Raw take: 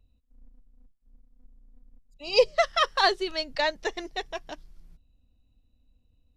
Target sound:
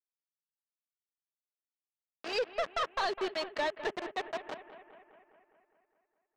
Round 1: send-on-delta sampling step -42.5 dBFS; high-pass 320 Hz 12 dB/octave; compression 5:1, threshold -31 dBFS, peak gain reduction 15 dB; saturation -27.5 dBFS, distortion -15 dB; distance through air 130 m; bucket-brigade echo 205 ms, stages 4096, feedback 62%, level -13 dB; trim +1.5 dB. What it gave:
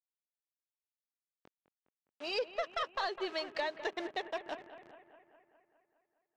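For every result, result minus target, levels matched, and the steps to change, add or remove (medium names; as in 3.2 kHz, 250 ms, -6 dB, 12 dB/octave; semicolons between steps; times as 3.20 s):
send-on-delta sampling: distortion -14 dB; compression: peak gain reduction +7.5 dB
change: send-on-delta sampling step -30.5 dBFS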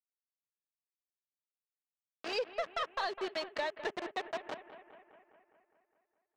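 compression: peak gain reduction +7 dB
change: compression 5:1, threshold -22 dBFS, peak gain reduction 8 dB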